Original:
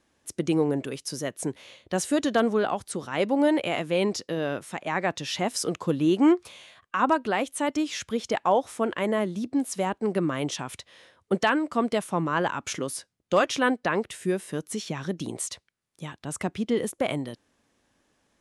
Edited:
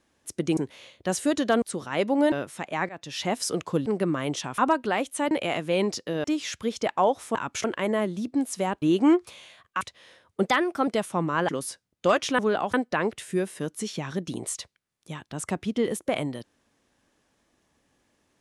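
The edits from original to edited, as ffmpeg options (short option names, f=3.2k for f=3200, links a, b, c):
-filter_complex "[0:a]asplit=18[a][b][c][d][e][f][g][h][i][j][k][l][m][n][o][p][q][r];[a]atrim=end=0.572[s];[b]atrim=start=1.428:end=2.482[t];[c]atrim=start=2.828:end=3.532[u];[d]atrim=start=4.458:end=5.03,asetpts=PTS-STARTPTS,afade=t=out:st=0.568:d=0.004:c=hsin:silence=0.0891251[v];[e]atrim=start=5.03:end=6.002,asetpts=PTS-STARTPTS,afade=t=in:d=0.36:silence=0.0891251[w];[f]atrim=start=10.008:end=10.732[x];[g]atrim=start=6.988:end=7.722[y];[h]atrim=start=3.528:end=4.462[z];[i]atrim=start=7.718:end=8.832[aa];[j]atrim=start=12.468:end=12.762[ab];[k]atrim=start=8.828:end=10.012[ac];[l]atrim=start=5.998:end=6.992[ad];[m]atrim=start=10.728:end=11.374[ae];[n]atrim=start=11.37:end=11.86,asetpts=PTS-STARTPTS,asetrate=50715,aresample=44100,atrim=end_sample=18790,asetpts=PTS-STARTPTS[af];[o]atrim=start=11.856:end=12.472[ag];[p]atrim=start=12.758:end=13.662[ah];[q]atrim=start=2.478:end=2.832[ai];[r]atrim=start=13.658[aj];[s][t]acrossfade=d=0.004:c1=hsin:c2=hsin[ak];[ak][u]acrossfade=d=0.004:c1=hsin:c2=hsin[al];[v][w]concat=n=2:v=0:a=1[am];[al][am]acrossfade=d=0.004:c1=hsin:c2=hsin[an];[an][x]acrossfade=d=0.004:c1=hsin:c2=hsin[ao];[ao][y]acrossfade=d=0.004:c1=hsin:c2=hsin[ap];[ap][z]acrossfade=d=0.004:c1=hsin:c2=hsin[aq];[aq][aa]acrossfade=d=0.004:c1=hsin:c2=hsin[ar];[ar][ab]acrossfade=d=0.004:c1=hsin:c2=hsin[as];[as][ac]acrossfade=d=0.004:c1=hsin:c2=hsin[at];[at][ad]acrossfade=d=0.004:c1=hsin:c2=hsin[au];[au][ae]acrossfade=d=0.004:c1=hsin:c2=hsin[av];[av][af]acrossfade=d=0.004:c1=hsin:c2=hsin[aw];[aw][ag]acrossfade=d=0.004:c1=hsin:c2=hsin[ax];[ax][ah]acrossfade=d=0.004:c1=hsin:c2=hsin[ay];[ay][ai]acrossfade=d=0.004:c1=hsin:c2=hsin[az];[az][aj]acrossfade=d=0.004:c1=hsin:c2=hsin"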